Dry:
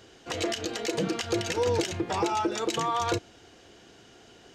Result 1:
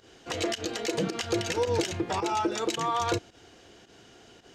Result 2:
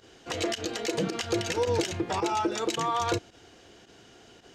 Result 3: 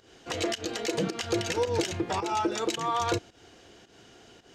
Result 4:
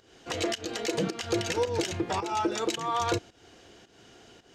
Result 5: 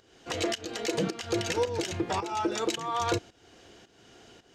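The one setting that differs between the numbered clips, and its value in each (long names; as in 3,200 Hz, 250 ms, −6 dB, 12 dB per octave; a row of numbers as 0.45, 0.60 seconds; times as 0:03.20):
fake sidechain pumping, release: 99, 63, 172, 266, 424 milliseconds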